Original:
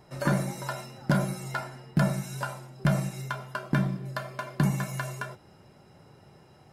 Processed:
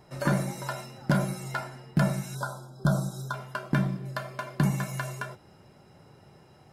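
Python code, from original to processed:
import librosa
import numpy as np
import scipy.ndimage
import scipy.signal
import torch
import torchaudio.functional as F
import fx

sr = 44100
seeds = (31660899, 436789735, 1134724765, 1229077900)

y = fx.spec_erase(x, sr, start_s=2.35, length_s=0.99, low_hz=1600.0, high_hz=3200.0)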